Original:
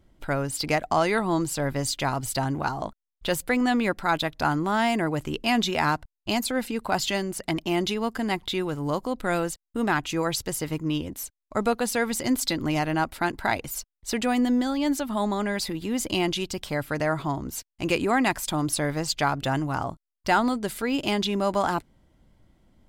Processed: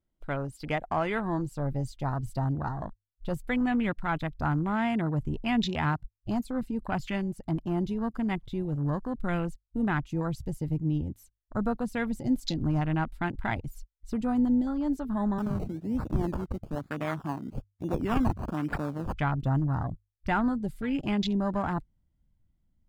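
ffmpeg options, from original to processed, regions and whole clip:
-filter_complex "[0:a]asettb=1/sr,asplit=3[a][b][c];[a]atrim=end=15.384[d];[b]atrim=start=15.38:end=19.16,asetpts=PTS-STARTPTS,afade=t=in:d=0.004:c=qsin,afade=t=out:st=3.776:d=0.004:c=qsin,highpass=f=190:w=0.5412,highpass=f=190:w=1.3066,acrusher=samples=20:mix=1:aa=0.000001:lfo=1:lforange=12:lforate=1.1[e];[c]atrim=start=19.156[f];[d][e]acrossfade=d=0.004:c1=hsin:c2=qsin[g];[g][f]acrossfade=d=0.004:c1=qsin:c2=hsin,bandreject=f=50:t=h:w=6,bandreject=f=100:t=h:w=6,afwtdn=0.0316,asubboost=boost=4.5:cutoff=190,volume=-5.5dB"

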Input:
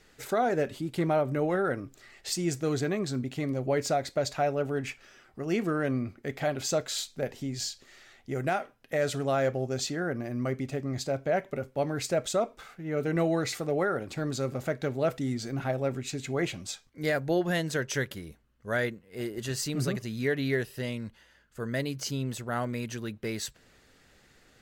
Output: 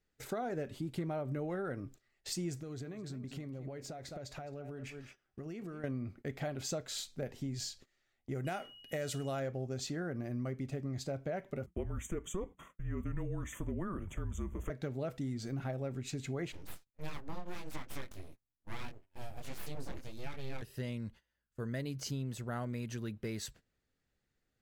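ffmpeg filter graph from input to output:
-filter_complex "[0:a]asettb=1/sr,asplit=3[a][b][c];[a]atrim=end=2.604[d];[b]atrim=start=2.6:end=5.84,asetpts=PTS-STARTPTS,afade=t=in:d=0.004:c=qsin,afade=t=out:st=3.236:d=0.004:c=qsin,aecho=1:1:210:0.2,atrim=end_sample=142884,acompressor=threshold=-36dB:ratio=16:attack=3.2:release=140:knee=1:detection=peak[e];[c]atrim=start=5.836[f];[d][e]acrossfade=d=0.004:c1=hsin:c2=qsin[g];[g][f]acrossfade=d=0.004:c1=qsin:c2=hsin,asettb=1/sr,asplit=3[h][i][j];[h]atrim=end=8.454[k];[i]atrim=start=8.45:end=9.4,asetpts=PTS-STARTPTS,afade=t=in:d=0.004:c=qsin,afade=t=out:st=0.946:d=0.004:c=qsin,highshelf=f=4.4k:g=10,aeval=exprs='val(0)+0.00501*sin(2*PI*2900*n/s)':c=same[l];[j]atrim=start=9.396[m];[k][l]acrossfade=d=0.004:c1=hsin:c2=qsin[n];[n][m]acrossfade=d=0.004:c1=qsin:c2=hsin,asettb=1/sr,asplit=3[o][p][q];[o]atrim=end=11.664[r];[p]atrim=start=11.66:end=14.7,asetpts=PTS-STARTPTS,afade=t=in:d=0.004:c=qsin,afade=t=out:st=3.036:d=0.004:c=qsin,agate=range=-33dB:threshold=-48dB:ratio=3:release=100:detection=peak,asuperstop=centerf=4800:order=12:qfactor=1.8,afreqshift=-190[s];[q]atrim=start=14.696[t];[r][s]acrossfade=d=0.004:c1=hsin:c2=qsin[u];[u][t]acrossfade=d=0.004:c1=qsin:c2=hsin,asettb=1/sr,asplit=3[v][w][x];[v]atrim=end=16.524[y];[w]atrim=start=16.52:end=20.62,asetpts=PTS-STARTPTS,afade=t=in:d=0.004:c=qsin,afade=t=out:st=4.096:d=0.004:c=qsin,flanger=delay=19:depth=3.7:speed=1.6,aeval=exprs='abs(val(0))':c=same[z];[x]atrim=start=20.616[aa];[y][z]acrossfade=d=0.004:c1=hsin:c2=qsin[ab];[ab][aa]acrossfade=d=0.004:c1=qsin:c2=hsin,agate=range=-19dB:threshold=-49dB:ratio=16:detection=peak,lowshelf=f=250:g=8,acompressor=threshold=-27dB:ratio=6,volume=-7dB"

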